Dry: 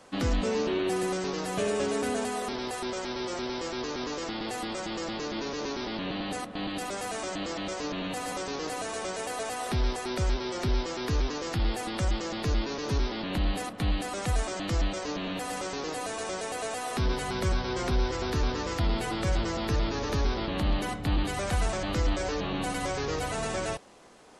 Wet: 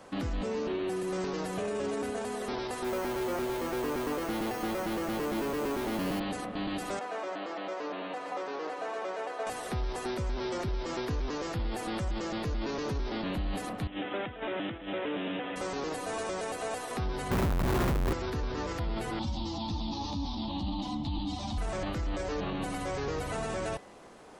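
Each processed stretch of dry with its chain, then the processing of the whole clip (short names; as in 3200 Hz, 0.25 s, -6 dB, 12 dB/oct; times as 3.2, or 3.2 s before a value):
2.84–6.2 LPF 9400 Hz + hard clip -30 dBFS + careless resampling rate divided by 6×, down filtered, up hold
6.99–9.47 HPF 470 Hz + tape spacing loss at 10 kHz 24 dB
13.87–15.56 negative-ratio compressor -31 dBFS + speaker cabinet 180–5400 Hz, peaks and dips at 180 Hz -4 dB, 710 Hz -4 dB, 1100 Hz -7 dB + careless resampling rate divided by 6×, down none, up filtered
17.31–18.13 median filter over 15 samples + comb 0.8 ms, depth 78% + Schmitt trigger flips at -35.5 dBFS
19.19–21.58 EQ curve 180 Hz 0 dB, 290 Hz +7 dB, 410 Hz -20 dB, 890 Hz +5 dB, 1500 Hz -20 dB, 2200 Hz -12 dB, 3600 Hz +9 dB, 5400 Hz +5 dB, 13000 Hz -25 dB + ensemble effect
whole clip: limiter -28.5 dBFS; bell 6000 Hz -6 dB 2.5 oct; de-hum 249.3 Hz, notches 14; gain +3.5 dB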